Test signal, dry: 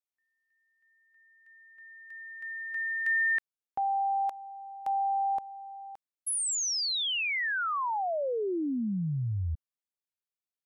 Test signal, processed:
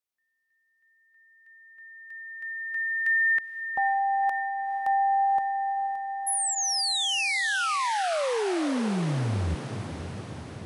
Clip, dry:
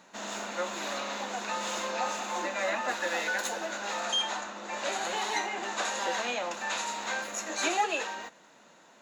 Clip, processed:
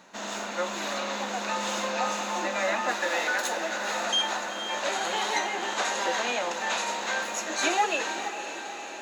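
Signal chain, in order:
notch filter 7,100 Hz, Q 22
feedback delay with all-pass diffusion 489 ms, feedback 67%, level −9.5 dB
level +3 dB

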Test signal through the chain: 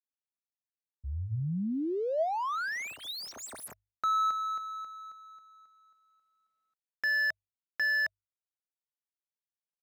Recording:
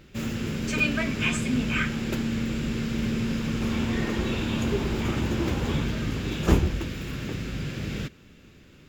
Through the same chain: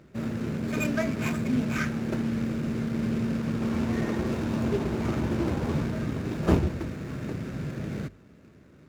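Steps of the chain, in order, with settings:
running median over 15 samples
high-pass filter 73 Hz
high-shelf EQ 11,000 Hz −4 dB
mains-hum notches 50/100 Hz
hollow resonant body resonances 640/3,700 Hz, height 6 dB

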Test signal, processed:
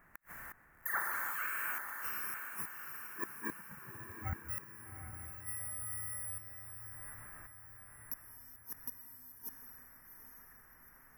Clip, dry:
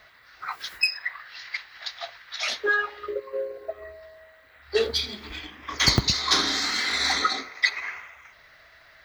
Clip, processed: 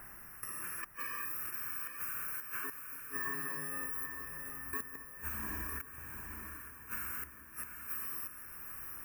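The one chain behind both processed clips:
samples in bit-reversed order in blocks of 64 samples
reverb whose tail is shaped and stops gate 380 ms flat, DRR −5.5 dB
background noise pink −61 dBFS
output level in coarse steps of 18 dB
gate with flip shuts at −24 dBFS, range −39 dB
downward compressor 4 to 1, threshold −42 dBFS
drawn EQ curve 170 Hz 0 dB, 500 Hz −4 dB, 1,800 Hz +13 dB, 3,600 Hz −26 dB, 14,000 Hz −1 dB
on a send: feedback delay with all-pass diffusion 805 ms, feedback 50%, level −6.5 dB
on the sum: level +5.5 dB

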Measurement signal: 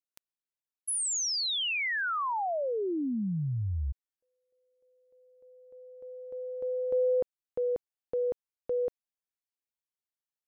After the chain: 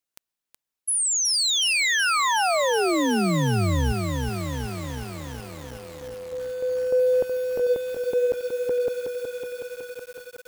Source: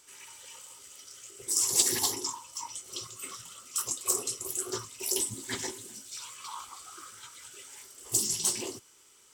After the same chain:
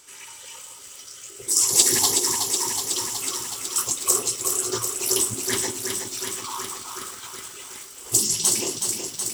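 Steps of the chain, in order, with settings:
feedback echo at a low word length 371 ms, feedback 80%, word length 8 bits, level −5.5 dB
level +7.5 dB

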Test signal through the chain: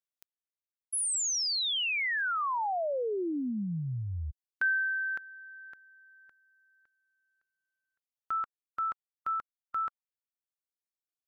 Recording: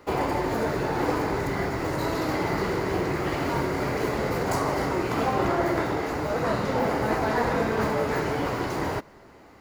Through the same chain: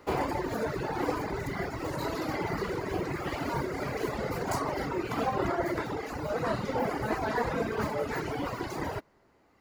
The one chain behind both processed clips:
reverb reduction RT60 1.8 s
level −2.5 dB

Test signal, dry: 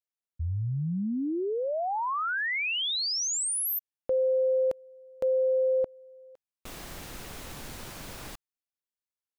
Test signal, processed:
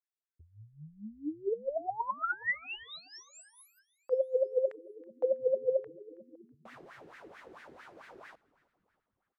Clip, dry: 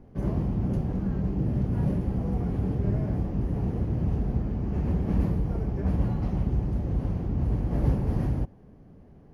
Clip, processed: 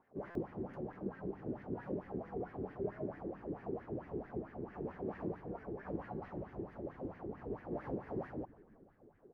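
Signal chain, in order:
LFO wah 4.5 Hz 350–1,900 Hz, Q 4.5
on a send: echo with shifted repeats 324 ms, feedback 52%, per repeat −94 Hz, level −22 dB
on the sum: buffer that repeats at 0:00.30, samples 256, times 8
level +3 dB

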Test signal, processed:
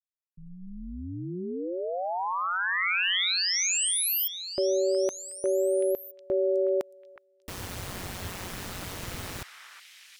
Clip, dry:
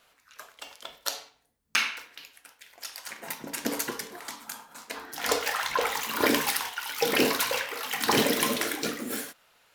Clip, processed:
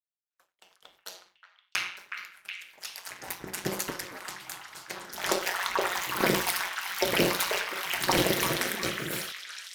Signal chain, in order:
fade in at the beginning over 3.02 s
downward expander −58 dBFS
ring modulation 91 Hz
echo through a band-pass that steps 367 ms, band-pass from 1,600 Hz, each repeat 0.7 octaves, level −4 dB
level +1.5 dB

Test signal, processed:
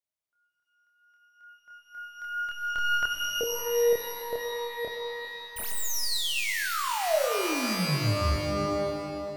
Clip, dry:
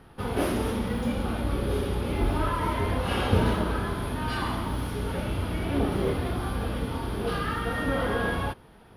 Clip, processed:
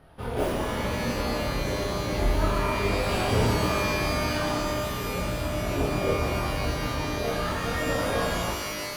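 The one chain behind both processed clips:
stylus tracing distortion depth 0.051 ms
parametric band 640 Hz +8 dB 0.31 octaves
multi-voice chorus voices 4, 0.3 Hz, delay 27 ms, depth 1.6 ms
reverb with rising layers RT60 2.4 s, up +12 semitones, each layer −2 dB, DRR 6 dB

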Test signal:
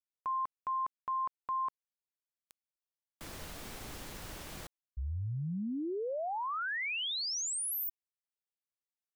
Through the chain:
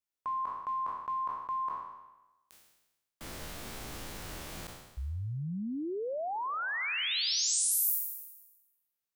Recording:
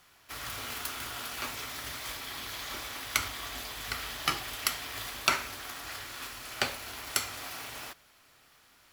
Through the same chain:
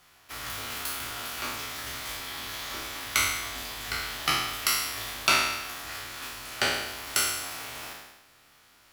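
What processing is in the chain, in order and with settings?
peak hold with a decay on every bin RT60 1.06 s

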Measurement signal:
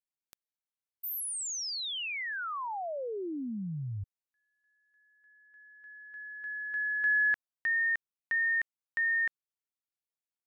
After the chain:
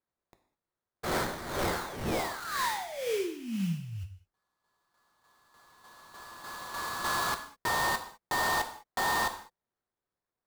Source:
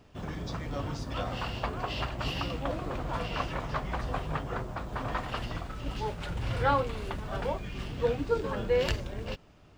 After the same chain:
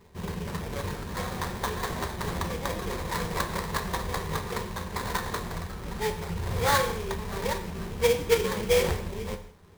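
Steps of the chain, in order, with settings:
EQ curve with evenly spaced ripples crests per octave 0.83, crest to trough 13 dB
sample-rate reduction 2,800 Hz, jitter 20%
reverb whose tail is shaped and stops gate 230 ms falling, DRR 6.5 dB

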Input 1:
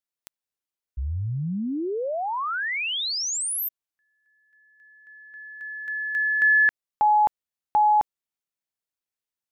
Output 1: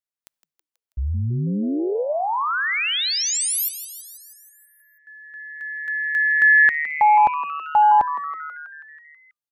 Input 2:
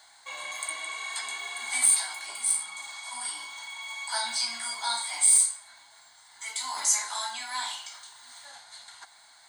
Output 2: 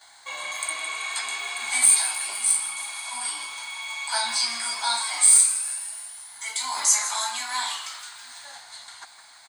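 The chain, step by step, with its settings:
noise gate with hold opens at −46 dBFS, range −9 dB
echo with shifted repeats 162 ms, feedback 64%, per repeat +150 Hz, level −12.5 dB
level +4.5 dB

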